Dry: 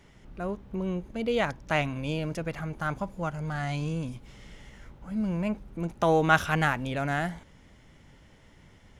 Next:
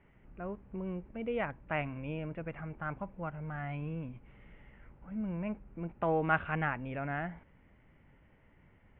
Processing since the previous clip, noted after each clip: steep low-pass 2.7 kHz 48 dB/octave; trim -7.5 dB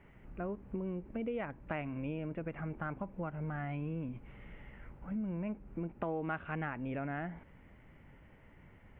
dynamic bell 300 Hz, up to +6 dB, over -50 dBFS, Q 1; compression 4:1, threshold -41 dBFS, peak gain reduction 16 dB; trim +4.5 dB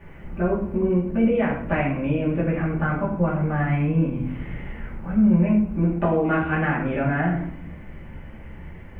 reverberation RT60 0.65 s, pre-delay 3 ms, DRR -8 dB; trim +6.5 dB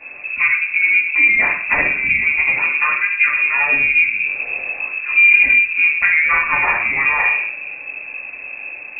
frequency inversion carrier 2.6 kHz; trim +6 dB

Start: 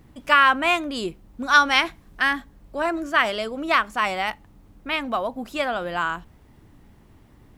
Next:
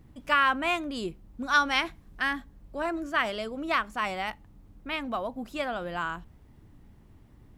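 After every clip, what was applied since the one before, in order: bass shelf 260 Hz +6.5 dB; trim -7.5 dB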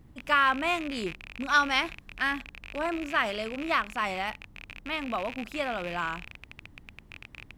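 rattle on loud lows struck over -49 dBFS, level -27 dBFS

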